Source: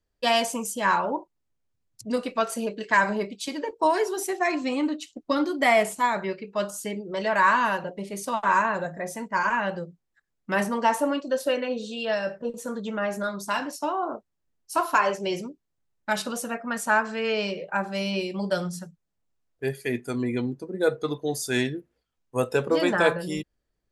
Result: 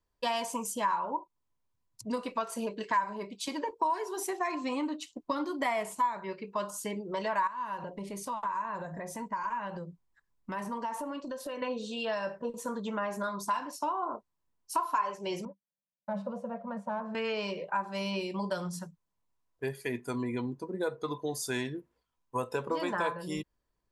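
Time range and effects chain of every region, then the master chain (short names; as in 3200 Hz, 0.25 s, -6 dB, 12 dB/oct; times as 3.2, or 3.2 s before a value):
7.47–11.62 compressor 4:1, threshold -35 dBFS + low shelf 150 Hz +8 dB
15.45–17.15 sample leveller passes 2 + double band-pass 330 Hz, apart 1.5 oct
whole clip: bell 1000 Hz +14 dB 0.27 oct; compressor 3:1, threshold -28 dBFS; gain -3 dB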